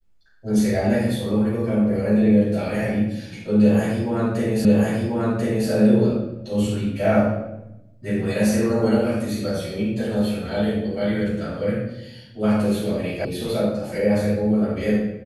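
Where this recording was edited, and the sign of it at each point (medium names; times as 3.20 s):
4.65 s: repeat of the last 1.04 s
13.25 s: sound stops dead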